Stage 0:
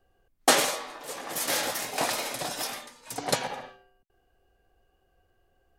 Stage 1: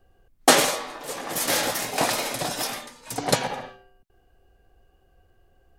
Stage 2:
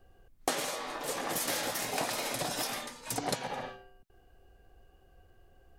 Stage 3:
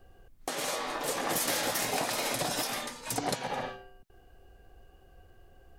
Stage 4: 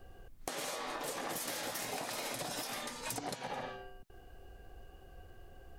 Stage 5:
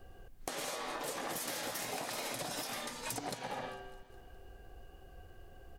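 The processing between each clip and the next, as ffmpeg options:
-af "lowshelf=f=270:g=6,volume=1.58"
-af "acompressor=threshold=0.0282:ratio=5"
-af "alimiter=limit=0.0794:level=0:latency=1:release=250,volume=1.58"
-af "acompressor=threshold=0.01:ratio=6,volume=1.33"
-af "aecho=1:1:204|408|612|816|1020:0.126|0.0692|0.0381|0.0209|0.0115"

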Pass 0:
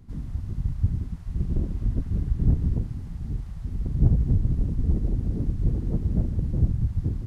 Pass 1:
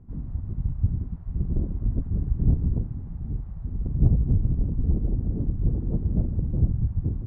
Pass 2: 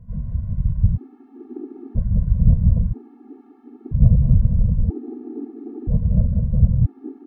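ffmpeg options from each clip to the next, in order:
-af "lowpass=1000"
-af "aecho=1:1:193:0.422,afftfilt=real='re*gt(sin(2*PI*0.51*pts/sr)*(1-2*mod(floor(b*sr/1024/230),2)),0)':imag='im*gt(sin(2*PI*0.51*pts/sr)*(1-2*mod(floor(b*sr/1024/230),2)),0)':win_size=1024:overlap=0.75,volume=2.11"

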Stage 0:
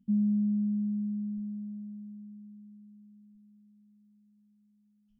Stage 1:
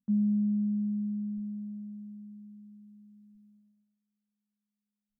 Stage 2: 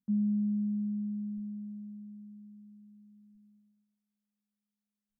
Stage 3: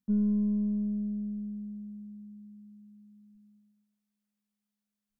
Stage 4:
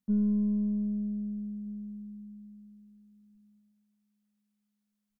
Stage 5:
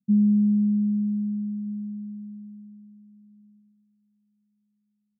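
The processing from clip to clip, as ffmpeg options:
-af "agate=range=0.0891:threshold=0.001:ratio=16:detection=peak"
-af "lowshelf=f=350:g=3.5,volume=0.562"
-af "aeval=exprs='0.0631*(cos(1*acos(clip(val(0)/0.0631,-1,1)))-cos(1*PI/2))+0.00562*(cos(2*acos(clip(val(0)/0.0631,-1,1)))-cos(2*PI/2))+0.000794*(cos(3*acos(clip(val(0)/0.0631,-1,1)))-cos(3*PI/2))+0.000398*(cos(7*acos(clip(val(0)/0.0631,-1,1)))-cos(7*PI/2))':c=same,volume=1.33"
-filter_complex "[0:a]asplit=2[s0][s1];[s1]adelay=1574,volume=0.0398,highshelf=f=4000:g=-35.4[s2];[s0][s2]amix=inputs=2:normalize=0"
-af "asuperpass=centerf=160:order=4:qfactor=1.3,volume=2.66"

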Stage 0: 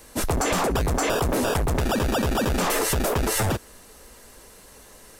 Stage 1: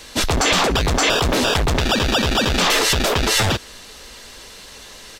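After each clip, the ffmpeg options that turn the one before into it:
-filter_complex "[0:a]firequalizer=gain_entry='entry(500,0);entry(3500,13);entry(9900,-4)':delay=0.05:min_phase=1,asplit=2[s0][s1];[s1]alimiter=limit=0.15:level=0:latency=1,volume=0.75[s2];[s0][s2]amix=inputs=2:normalize=0"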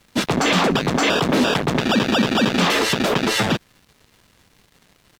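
-af "highpass=f=170:w=0.5412,highpass=f=170:w=1.3066,aeval=exprs='sgn(val(0))*max(abs(val(0))-0.0158,0)':c=same,bass=f=250:g=13,treble=f=4000:g=-7"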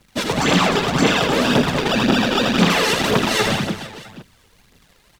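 -filter_complex "[0:a]asplit=2[s0][s1];[s1]aecho=0:1:80|180|305|461.2|656.6:0.631|0.398|0.251|0.158|0.1[s2];[s0][s2]amix=inputs=2:normalize=0,aphaser=in_gain=1:out_gain=1:delay=2.5:decay=0.51:speed=1.9:type=triangular,volume=0.794"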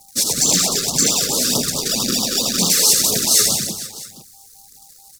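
-af "aeval=exprs='val(0)+0.00501*sin(2*PI*790*n/s)':c=same,aexciter=amount=14.3:drive=5:freq=4500,afftfilt=real='re*(1-between(b*sr/1024,770*pow(2000/770,0.5+0.5*sin(2*PI*4.6*pts/sr))/1.41,770*pow(2000/770,0.5+0.5*sin(2*PI*4.6*pts/sr))*1.41))':imag='im*(1-between(b*sr/1024,770*pow(2000/770,0.5+0.5*sin(2*PI*4.6*pts/sr))/1.41,770*pow(2000/770,0.5+0.5*sin(2*PI*4.6*pts/sr))*1.41))':win_size=1024:overlap=0.75,volume=0.422"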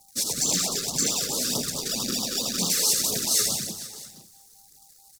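-af "aecho=1:1:542:0.0708,volume=0.376"

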